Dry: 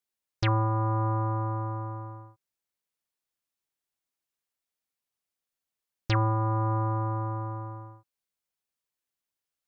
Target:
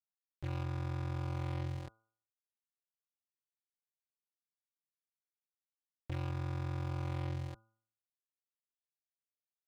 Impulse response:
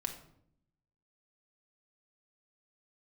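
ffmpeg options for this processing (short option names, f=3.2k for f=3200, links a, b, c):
-af "aresample=8000,acrusher=bits=4:mix=0:aa=0.000001,aresample=44100,equalizer=f=83:w=0.8:g=9.5,alimiter=limit=-20dB:level=0:latency=1,adynamicsmooth=sensitivity=3:basefreq=630,lowpass=f=2.1k:p=1,asoftclip=type=hard:threshold=-33.5dB,aeval=exprs='val(0)*sin(2*PI*22*n/s)':c=same,equalizer=f=1.2k:w=1.5:g=-2.5,bandreject=f=111.5:t=h:w=4,bandreject=f=223:t=h:w=4,bandreject=f=334.5:t=h:w=4,bandreject=f=446:t=h:w=4,bandreject=f=557.5:t=h:w=4,bandreject=f=669:t=h:w=4,bandreject=f=780.5:t=h:w=4,bandreject=f=892:t=h:w=4,bandreject=f=1.0035k:t=h:w=4,bandreject=f=1.115k:t=h:w=4,bandreject=f=1.2265k:t=h:w=4,bandreject=f=1.338k:t=h:w=4,bandreject=f=1.4495k:t=h:w=4"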